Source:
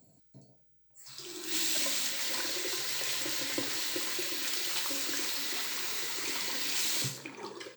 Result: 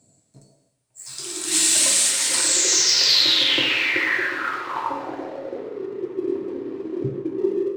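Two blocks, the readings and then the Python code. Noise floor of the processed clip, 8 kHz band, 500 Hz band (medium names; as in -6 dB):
-65 dBFS, +14.5 dB, +17.0 dB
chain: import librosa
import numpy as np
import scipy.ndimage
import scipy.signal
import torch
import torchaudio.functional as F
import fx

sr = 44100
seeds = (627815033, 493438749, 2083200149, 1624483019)

y = fx.filter_sweep_lowpass(x, sr, from_hz=9200.0, to_hz=370.0, start_s=2.33, end_s=5.9, q=7.3)
y = fx.leveller(y, sr, passes=1)
y = fx.rev_gated(y, sr, seeds[0], gate_ms=320, shape='falling', drr_db=2.5)
y = y * librosa.db_to_amplitude(4.0)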